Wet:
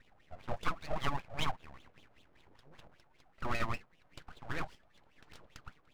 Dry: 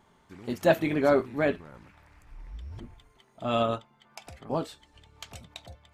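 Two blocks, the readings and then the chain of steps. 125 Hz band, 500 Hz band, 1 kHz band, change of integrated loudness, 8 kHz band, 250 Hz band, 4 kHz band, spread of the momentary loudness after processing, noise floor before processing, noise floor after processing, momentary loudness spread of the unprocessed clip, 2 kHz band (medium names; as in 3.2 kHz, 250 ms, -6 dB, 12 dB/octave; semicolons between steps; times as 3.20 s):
-7.0 dB, -19.0 dB, -6.5 dB, -12.0 dB, no reading, -16.5 dB, -4.0 dB, 20 LU, -63 dBFS, -68 dBFS, 22 LU, -7.0 dB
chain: wah-wah 5.1 Hz 330–1700 Hz, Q 4.5; compression 16:1, threshold -36 dBFS, peak gain reduction 15.5 dB; full-wave rectifier; trim +9 dB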